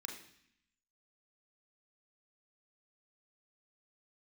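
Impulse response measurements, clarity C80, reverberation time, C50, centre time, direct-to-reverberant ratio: 9.5 dB, 0.65 s, 6.5 dB, 30 ms, 1.0 dB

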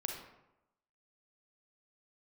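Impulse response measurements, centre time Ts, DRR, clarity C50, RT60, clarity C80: 39 ms, 1.5 dB, 3.5 dB, 0.90 s, 6.5 dB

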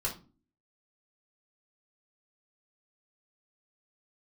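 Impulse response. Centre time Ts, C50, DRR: 18 ms, 10.5 dB, -4.5 dB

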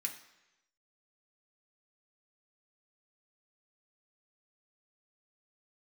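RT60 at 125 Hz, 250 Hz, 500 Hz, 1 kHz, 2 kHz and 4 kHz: 0.95 s, 0.85 s, 1.0 s, 1.0 s, 1.0 s, 0.95 s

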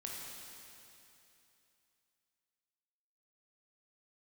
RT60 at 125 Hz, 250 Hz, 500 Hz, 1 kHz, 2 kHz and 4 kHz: 2.9 s, 2.9 s, 2.9 s, 2.9 s, 2.9 s, 2.9 s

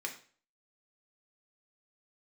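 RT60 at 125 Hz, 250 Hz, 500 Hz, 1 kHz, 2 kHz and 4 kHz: 0.45 s, 0.45 s, 0.45 s, 0.40 s, 0.40 s, 0.40 s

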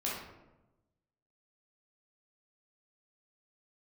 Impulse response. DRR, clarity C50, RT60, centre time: -6.0 dB, 0.5 dB, 1.0 s, 61 ms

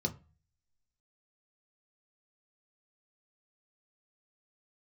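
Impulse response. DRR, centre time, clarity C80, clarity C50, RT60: 3.0 dB, 7 ms, 23.5 dB, 18.0 dB, 0.35 s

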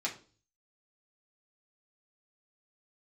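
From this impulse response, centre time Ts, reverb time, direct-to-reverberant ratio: 15 ms, 0.40 s, -3.5 dB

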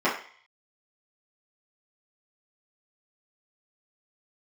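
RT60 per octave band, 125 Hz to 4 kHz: 0.35 s, 0.35 s, 0.40 s, 0.55 s, 0.65 s, 0.60 s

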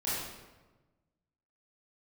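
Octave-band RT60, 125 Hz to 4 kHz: 1.7 s, 1.5 s, 1.3 s, 1.1 s, 1.0 s, 0.80 s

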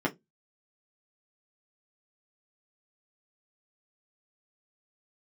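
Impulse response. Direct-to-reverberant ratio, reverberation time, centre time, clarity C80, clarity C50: -3.5 dB, 0.15 s, 13 ms, 32.0 dB, 22.0 dB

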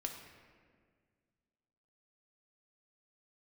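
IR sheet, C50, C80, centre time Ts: 5.5 dB, 7.0 dB, 40 ms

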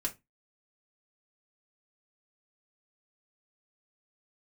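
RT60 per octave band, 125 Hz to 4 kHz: 0.30 s, 0.30 s, 0.20 s, 0.20 s, 0.20 s, 0.15 s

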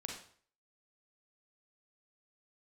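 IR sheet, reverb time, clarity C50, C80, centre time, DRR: 0.50 s, 3.0 dB, 8.0 dB, 35 ms, 0.0 dB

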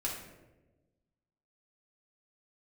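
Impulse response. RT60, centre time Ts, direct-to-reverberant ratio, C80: 1.1 s, 44 ms, -4.0 dB, 6.5 dB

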